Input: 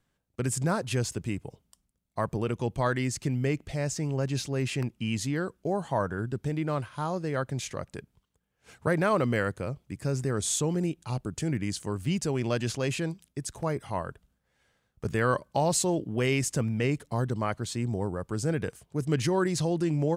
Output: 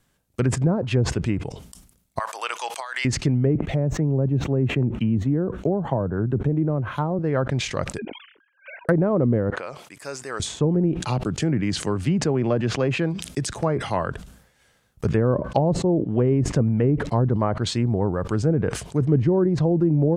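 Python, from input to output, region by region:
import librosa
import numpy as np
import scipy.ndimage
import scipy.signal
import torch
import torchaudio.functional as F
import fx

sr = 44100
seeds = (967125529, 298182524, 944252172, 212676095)

y = fx.chain(x, sr, fx.highpass(hz=810.0, slope=24),
    fx.over_compress(threshold_db=-39.0, ratio=-1.0), at=(2.19, 3.05))
y = fx.chain(y, sr, fx.peak_eq(hz=4900.0, db=-14.0, octaves=0.2),
    fx.resample_bad(factor=2, down='filtered', up='zero_stuff'),
    fx.band_squash(depth_pct=40), at=(3.55, 7.19))
y = fx.chain(y, sr, fx.sine_speech(),
    fx.over_compress(threshold_db=-40.0, ratio=-0.5),
    fx.env_phaser(low_hz=590.0, high_hz=1200.0, full_db=-43.0), at=(7.98, 8.89))
y = fx.chain(y, sr, fx.highpass(hz=930.0, slope=12),
    fx.tilt_eq(slope=-2.5), at=(9.5, 10.4))
y = fx.chain(y, sr, fx.low_shelf(hz=69.0, db=-10.5),
    fx.notch(hz=950.0, q=22.0),
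    fx.band_squash(depth_pct=40), at=(11.0, 14.08))
y = fx.env_lowpass_down(y, sr, base_hz=500.0, full_db=-22.5)
y = fx.high_shelf(y, sr, hz=6400.0, db=7.5)
y = fx.sustainer(y, sr, db_per_s=84.0)
y = F.gain(torch.from_numpy(y), 8.0).numpy()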